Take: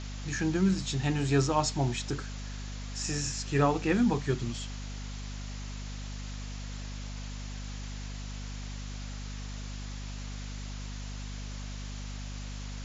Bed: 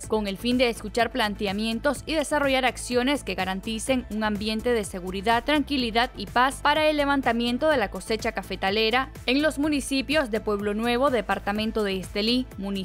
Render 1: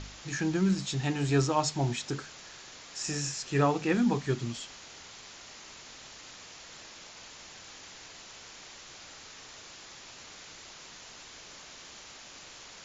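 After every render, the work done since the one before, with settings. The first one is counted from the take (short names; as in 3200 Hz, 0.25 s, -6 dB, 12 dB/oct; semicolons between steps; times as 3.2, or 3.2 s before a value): de-hum 50 Hz, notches 5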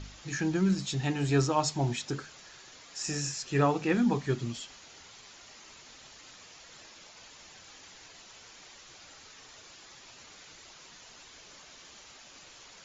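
denoiser 6 dB, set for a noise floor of -49 dBFS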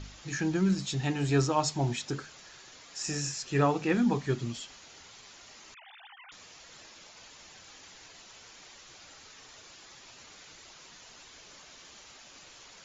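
5.74–6.32 sine-wave speech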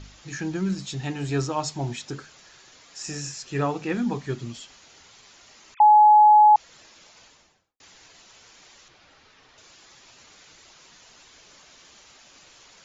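5.8–6.56 bleep 846 Hz -10 dBFS; 7.17–7.8 studio fade out; 8.88–9.58 air absorption 160 m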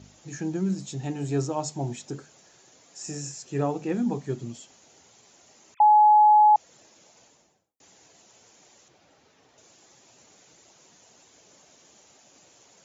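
HPF 110 Hz; band shelf 2300 Hz -9 dB 2.6 oct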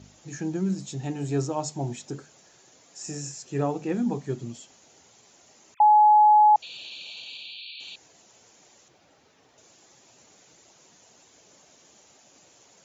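6.62–7.96 painted sound noise 2300–4600 Hz -41 dBFS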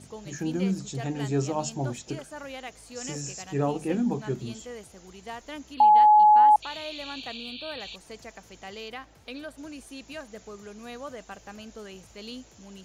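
add bed -17 dB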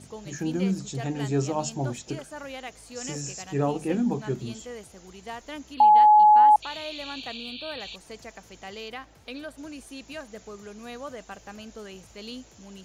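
gain +1 dB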